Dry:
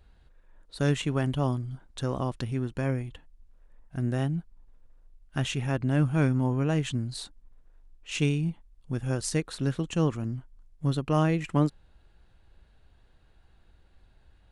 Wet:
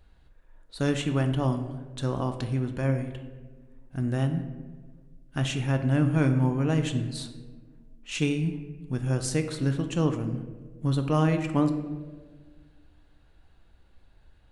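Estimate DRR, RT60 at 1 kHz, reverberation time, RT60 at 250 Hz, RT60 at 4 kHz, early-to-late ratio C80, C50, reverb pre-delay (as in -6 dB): 6.5 dB, 1.2 s, 1.5 s, 2.0 s, 0.75 s, 11.5 dB, 9.5 dB, 3 ms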